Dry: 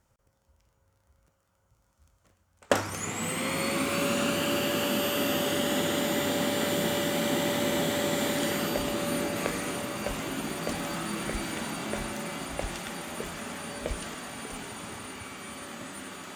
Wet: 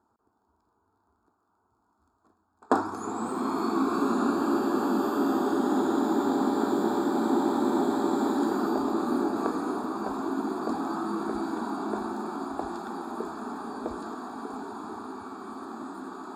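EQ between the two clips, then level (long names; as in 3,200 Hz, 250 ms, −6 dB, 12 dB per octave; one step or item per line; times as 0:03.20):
moving average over 15 samples
high-pass filter 190 Hz 12 dB per octave
phaser with its sweep stopped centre 550 Hz, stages 6
+8.0 dB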